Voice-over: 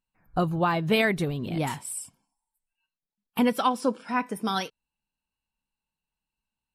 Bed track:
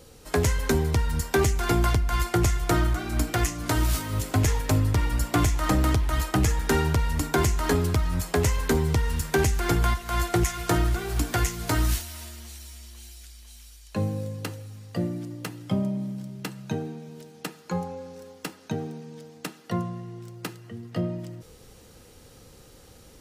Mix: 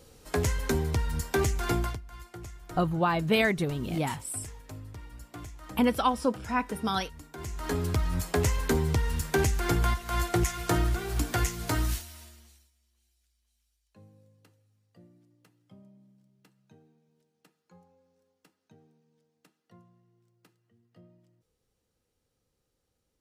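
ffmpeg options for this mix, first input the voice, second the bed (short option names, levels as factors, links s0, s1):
-filter_complex "[0:a]adelay=2400,volume=0.841[s0];[1:a]volume=4.73,afade=t=out:st=1.73:d=0.28:silence=0.149624,afade=t=in:st=7.37:d=0.65:silence=0.125893,afade=t=out:st=11.62:d=1.09:silence=0.0530884[s1];[s0][s1]amix=inputs=2:normalize=0"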